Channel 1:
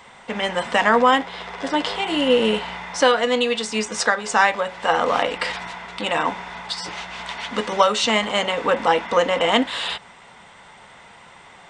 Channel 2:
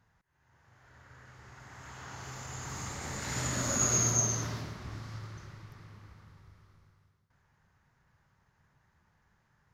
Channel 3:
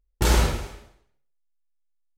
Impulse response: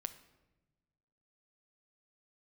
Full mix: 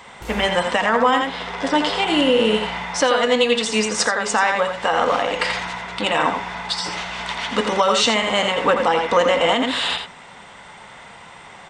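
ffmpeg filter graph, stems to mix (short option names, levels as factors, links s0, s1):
-filter_complex "[0:a]volume=1.19,asplit=3[s0][s1][s2];[s1]volume=0.376[s3];[s2]volume=0.596[s4];[1:a]adynamicsmooth=sensitivity=2:basefreq=5700,adelay=1400,volume=0.112[s5];[2:a]volume=0.158[s6];[3:a]atrim=start_sample=2205[s7];[s3][s7]afir=irnorm=-1:irlink=0[s8];[s4]aecho=0:1:84:1[s9];[s0][s5][s6][s8][s9]amix=inputs=5:normalize=0,alimiter=limit=0.473:level=0:latency=1:release=169"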